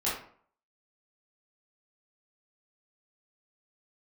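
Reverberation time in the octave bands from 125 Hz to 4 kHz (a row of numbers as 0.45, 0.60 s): 0.50, 0.55, 0.55, 0.55, 0.45, 0.35 s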